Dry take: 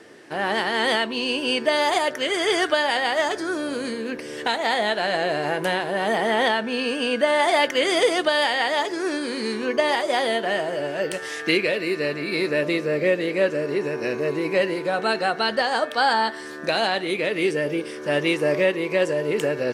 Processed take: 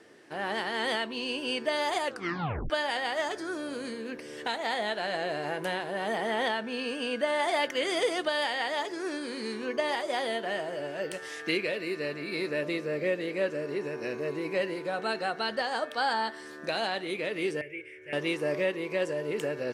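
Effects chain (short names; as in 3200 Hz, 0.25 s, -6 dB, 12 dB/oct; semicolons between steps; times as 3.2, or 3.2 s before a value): 2.05 tape stop 0.65 s; 17.61–18.13 EQ curve 110 Hz 0 dB, 230 Hz -29 dB, 360 Hz -6 dB, 1100 Hz -27 dB, 2200 Hz +8 dB, 4300 Hz -26 dB, 7400 Hz -16 dB; gain -8.5 dB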